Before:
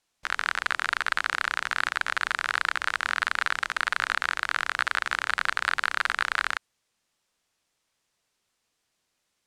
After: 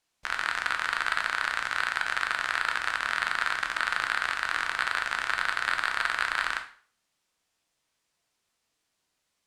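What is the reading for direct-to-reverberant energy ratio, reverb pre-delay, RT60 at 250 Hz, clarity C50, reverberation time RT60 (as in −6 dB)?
4.0 dB, 5 ms, 0.40 s, 11.0 dB, 0.45 s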